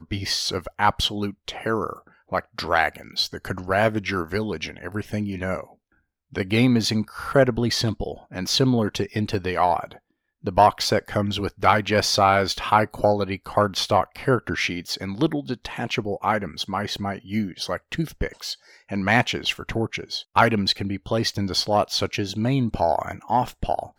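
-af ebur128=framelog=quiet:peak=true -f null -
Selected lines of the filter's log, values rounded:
Integrated loudness:
  I:         -23.4 LUFS
  Threshold: -33.6 LUFS
Loudness range:
  LRA:         5.6 LU
  Threshold: -43.6 LUFS
  LRA low:   -26.6 LUFS
  LRA high:  -20.9 LUFS
True peak:
  Peak:       -1.7 dBFS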